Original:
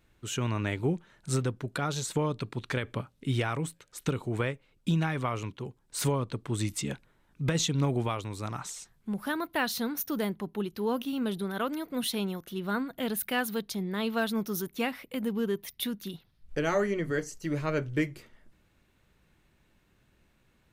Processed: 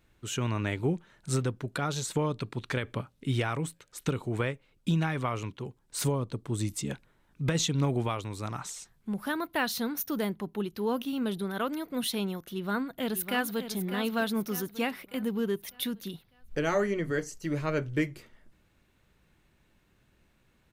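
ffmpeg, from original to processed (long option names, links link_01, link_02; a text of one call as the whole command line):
ffmpeg -i in.wav -filter_complex "[0:a]asettb=1/sr,asplit=3[link_01][link_02][link_03];[link_01]atrim=end=6.034[link_04];[link_02]atrim=start=6.03:end=6.9,asetpts=PTS-STARTPTS,afade=type=in:duration=0.004:curve=qsin,afade=type=out:start_time=0.866:duration=0.004:curve=qsin,equalizer=frequency=2000:width=0.59:gain=-6[link_05];[link_03]atrim=start=6.896[link_06];[link_04][link_05]acrossfade=duration=0.004:curve1=hsin:curve2=qsin[link_07];[link_07][link_06]acrossfade=duration=0.004:curve1=qsin:curve2=hsin,asplit=2[link_08][link_09];[link_09]afade=type=in:start_time=12.5:duration=0.01,afade=type=out:start_time=13.7:duration=0.01,aecho=0:1:600|1200|1800|2400|3000:0.334965|0.150734|0.0678305|0.0305237|0.0137357[link_10];[link_08][link_10]amix=inputs=2:normalize=0" out.wav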